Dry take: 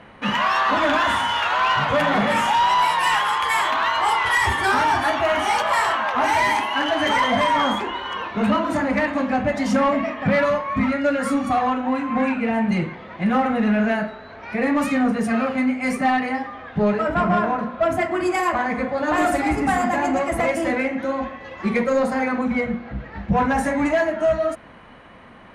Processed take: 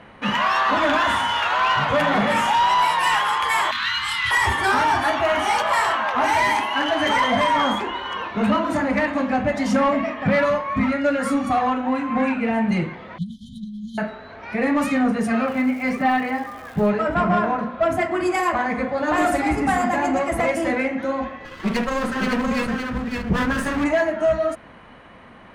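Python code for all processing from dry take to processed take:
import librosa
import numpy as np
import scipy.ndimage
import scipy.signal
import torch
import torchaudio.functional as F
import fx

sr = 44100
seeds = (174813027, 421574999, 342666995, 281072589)

y = fx.chain(x, sr, fx.cheby1_bandstop(low_hz=170.0, high_hz=1800.0, order=2),
    fx.peak_eq(hz=4000.0, db=7.5, octaves=0.44),
    fx.doubler(ms=26.0, db=-4.0), at=(3.71, 4.31))
y = fx.chain(y, sr, fx.peak_eq(hz=930.0, db=-12.0, octaves=0.26),
    fx.over_compress(threshold_db=-23.0, ratio=-0.5),
    fx.brickwall_bandstop(low_hz=220.0, high_hz=3000.0), at=(13.18, 13.98))
y = fx.lowpass(y, sr, hz=4200.0, slope=12, at=(15.46, 16.89), fade=0.02)
y = fx.dmg_crackle(y, sr, seeds[0], per_s=450.0, level_db=-37.0, at=(15.46, 16.89), fade=0.02)
y = fx.chain(y, sr, fx.lower_of_two(delay_ms=0.63),
    fx.echo_single(ms=564, db=-4.0), at=(21.45, 23.84))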